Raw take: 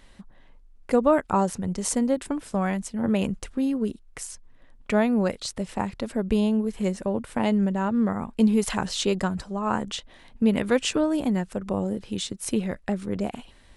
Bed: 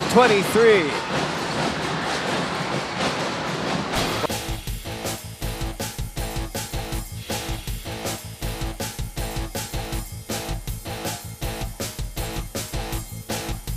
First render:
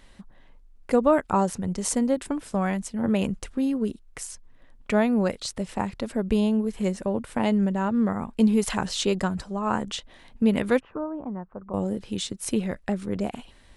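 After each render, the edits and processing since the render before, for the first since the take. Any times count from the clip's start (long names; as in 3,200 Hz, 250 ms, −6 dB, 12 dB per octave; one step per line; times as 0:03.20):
0:10.80–0:11.74: transistor ladder low-pass 1,300 Hz, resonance 50%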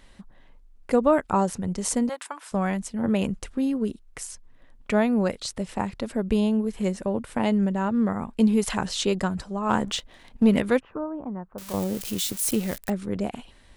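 0:02.09–0:02.52: high-pass with resonance 1,000 Hz, resonance Q 1.8
0:09.69–0:10.61: leveller curve on the samples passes 1
0:11.58–0:12.90: spike at every zero crossing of −23.5 dBFS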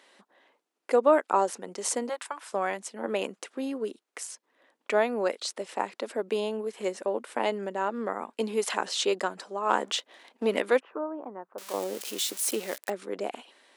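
high-pass filter 340 Hz 24 dB per octave
high-shelf EQ 11,000 Hz −6.5 dB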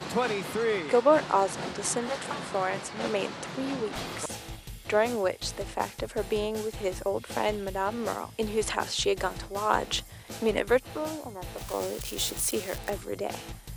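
mix in bed −12.5 dB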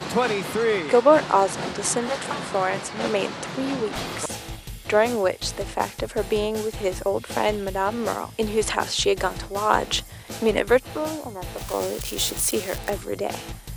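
level +5.5 dB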